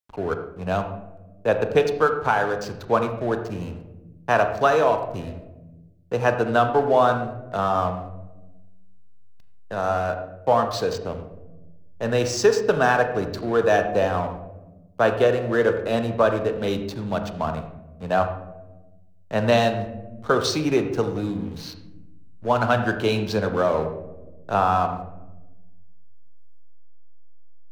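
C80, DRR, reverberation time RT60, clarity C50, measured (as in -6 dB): 10.5 dB, 7.0 dB, 1.1 s, 8.5 dB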